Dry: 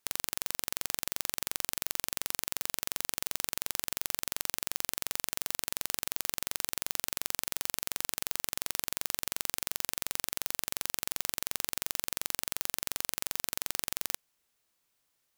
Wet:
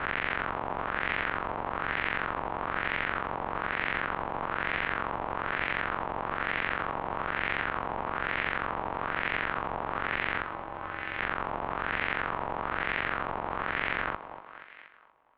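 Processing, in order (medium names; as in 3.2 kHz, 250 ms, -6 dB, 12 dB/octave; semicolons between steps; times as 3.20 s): reverse spectral sustain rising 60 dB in 0.54 s; 10.42–11.19 s: feedback comb 120 Hz, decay 0.17 s, harmonics odd, mix 70%; on a send: thinning echo 238 ms, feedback 55%, high-pass 510 Hz, level -11.5 dB; on the sum: mistuned SSB -270 Hz 220–3600 Hz; in parallel at -2.5 dB: peak limiter -29.5 dBFS, peak gain reduction 10 dB; on the sum: LFO low-pass sine 1.1 Hz 910–2000 Hz; trim +3.5 dB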